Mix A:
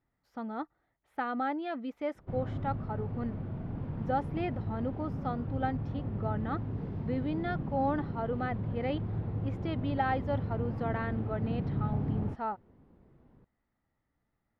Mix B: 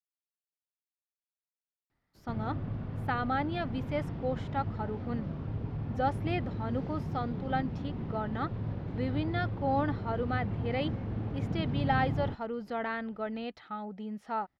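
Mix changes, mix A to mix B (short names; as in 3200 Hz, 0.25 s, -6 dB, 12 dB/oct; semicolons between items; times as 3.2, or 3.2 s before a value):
speech: entry +1.90 s; master: add high shelf 2600 Hz +11 dB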